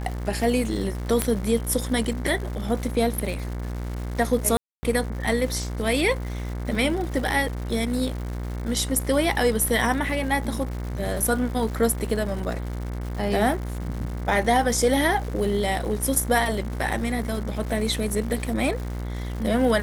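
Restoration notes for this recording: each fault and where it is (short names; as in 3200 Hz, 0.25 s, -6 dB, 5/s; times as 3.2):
buzz 60 Hz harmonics 38 -30 dBFS
crackle 270/s -33 dBFS
1.22 pop -6 dBFS
4.57–4.83 gap 0.26 s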